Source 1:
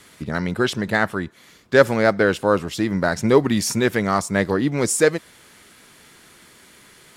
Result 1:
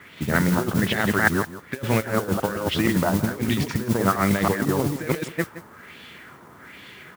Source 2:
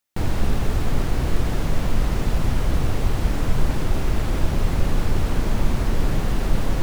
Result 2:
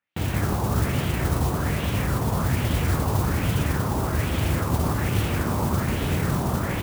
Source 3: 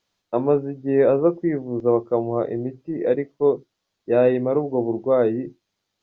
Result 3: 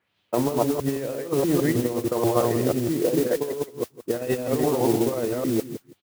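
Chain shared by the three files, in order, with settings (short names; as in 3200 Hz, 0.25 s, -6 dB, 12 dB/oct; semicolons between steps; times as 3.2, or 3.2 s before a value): reverse delay 0.16 s, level -0.5 dB; in parallel at -5.5 dB: soft clip -8.5 dBFS; on the sum: HPF 73 Hz 24 dB/oct; negative-ratio compressor -17 dBFS, ratio -0.5; LFO low-pass sine 1.2 Hz 980–3200 Hz; low shelf 160 Hz +6 dB; on a send: echo 0.17 s -15 dB; on the sum: modulation noise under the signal 15 dB; gain -7 dB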